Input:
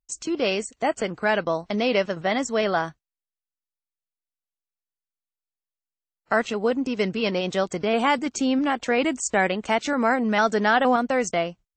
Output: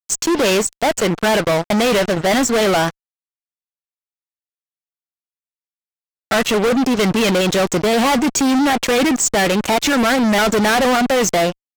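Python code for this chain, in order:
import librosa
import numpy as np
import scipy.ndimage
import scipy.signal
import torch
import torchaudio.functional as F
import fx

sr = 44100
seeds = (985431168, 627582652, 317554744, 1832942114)

y = fx.fuzz(x, sr, gain_db=34.0, gate_db=-40.0)
y = fx.wow_flutter(y, sr, seeds[0], rate_hz=2.1, depth_cents=28.0)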